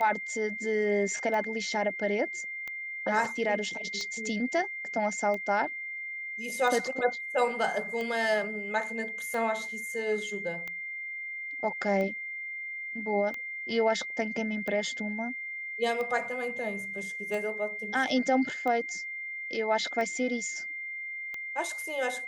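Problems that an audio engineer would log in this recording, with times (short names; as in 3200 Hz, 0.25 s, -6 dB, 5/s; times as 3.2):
tick 45 rpm -23 dBFS
tone 2100 Hz -35 dBFS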